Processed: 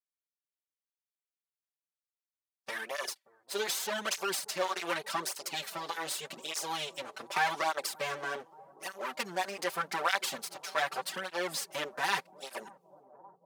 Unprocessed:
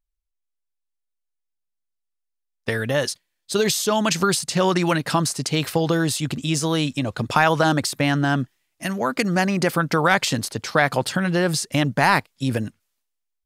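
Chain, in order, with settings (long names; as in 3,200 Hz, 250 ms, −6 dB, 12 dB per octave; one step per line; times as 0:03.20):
lower of the sound and its delayed copy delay 5.2 ms
high-pass filter 540 Hz 12 dB per octave
on a send: bucket-brigade delay 581 ms, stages 4,096, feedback 80%, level −21 dB
on the sum: through-zero flanger with one copy inverted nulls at 0.84 Hz, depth 6.1 ms
level −6 dB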